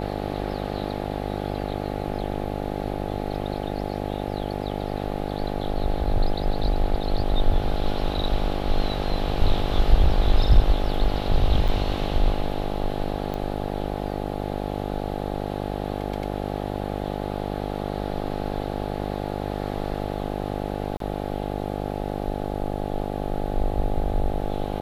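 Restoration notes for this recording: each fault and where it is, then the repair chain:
buzz 50 Hz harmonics 17 -29 dBFS
11.68–11.69 s: dropout 7 ms
13.34 s: pop -18 dBFS
20.97–21.00 s: dropout 33 ms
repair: de-click; de-hum 50 Hz, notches 17; interpolate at 11.68 s, 7 ms; interpolate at 20.97 s, 33 ms

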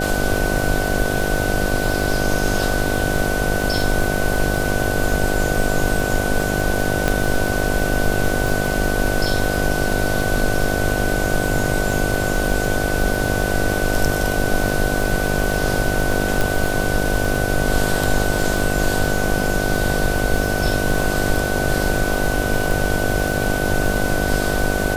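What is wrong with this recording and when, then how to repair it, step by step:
buzz 50 Hz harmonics 15 -23 dBFS
crackle 42 per s -22 dBFS
whine 1.5 kHz -25 dBFS
7.08 s: pop
16.41 s: pop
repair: de-click; band-stop 1.5 kHz, Q 30; de-hum 50 Hz, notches 15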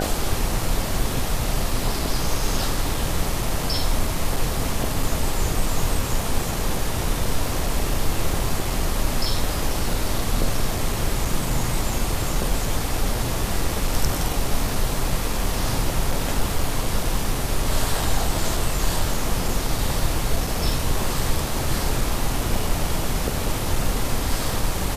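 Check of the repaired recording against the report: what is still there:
7.08 s: pop

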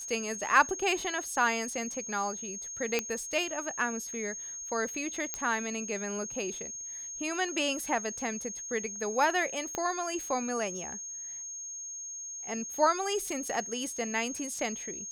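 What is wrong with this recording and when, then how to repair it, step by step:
whine 6.5 kHz -38 dBFS
2.99 s: pop -13 dBFS
5.34 s: pop -16 dBFS
9.75 s: pop -18 dBFS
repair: de-click; band-stop 6.5 kHz, Q 30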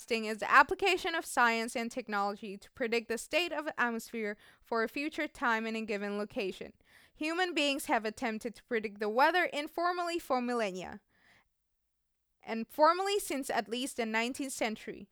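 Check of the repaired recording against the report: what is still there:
nothing left

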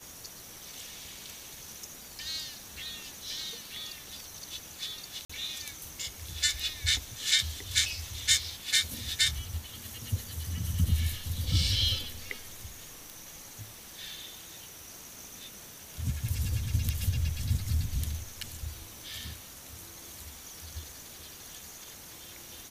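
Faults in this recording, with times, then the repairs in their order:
5.25–5.29 s: dropout 45 ms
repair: interpolate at 5.25 s, 45 ms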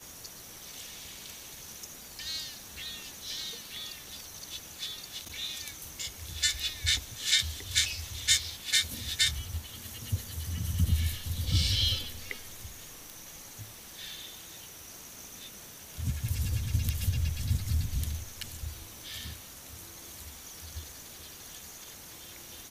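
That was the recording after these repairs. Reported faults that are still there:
nothing left

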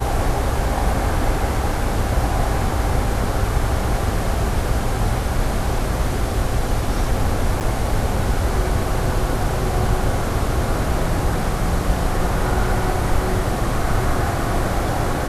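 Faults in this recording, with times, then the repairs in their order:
7.60–7.61 s: dropout 9.1 ms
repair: interpolate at 7.60 s, 9.1 ms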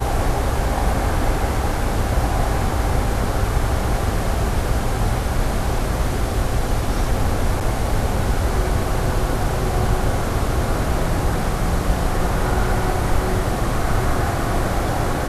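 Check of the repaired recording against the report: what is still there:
nothing left

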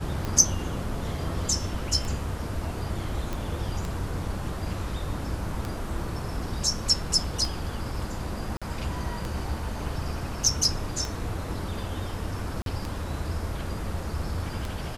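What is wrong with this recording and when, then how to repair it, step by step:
tick 33 1/3 rpm -17 dBFS
3.33 s: pop
8.57–8.62 s: dropout 46 ms
12.62–12.66 s: dropout 42 ms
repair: de-click; interpolate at 8.57 s, 46 ms; interpolate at 12.62 s, 42 ms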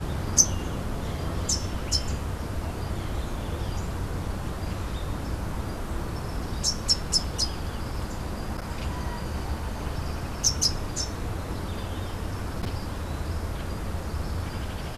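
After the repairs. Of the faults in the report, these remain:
nothing left

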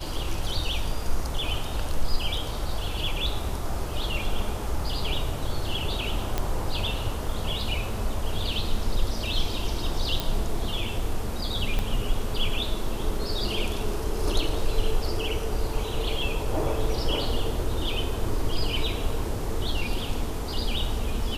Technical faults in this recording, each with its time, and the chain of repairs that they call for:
6.38 s: pop -11 dBFS
10.20 s: pop
11.79 s: pop -13 dBFS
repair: de-click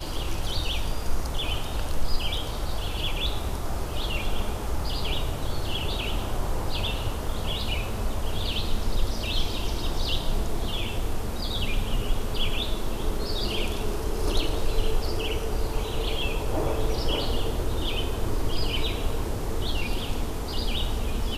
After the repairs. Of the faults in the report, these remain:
11.79 s: pop

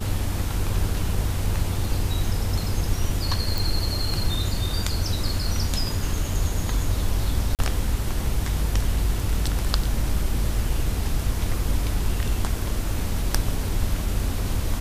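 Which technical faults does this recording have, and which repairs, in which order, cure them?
3.58 s: pop
7.55–7.59 s: dropout 38 ms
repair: de-click; interpolate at 7.55 s, 38 ms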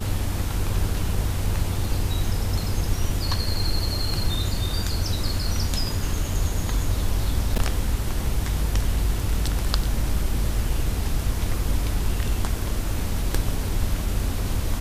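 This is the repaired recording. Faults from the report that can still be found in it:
nothing left

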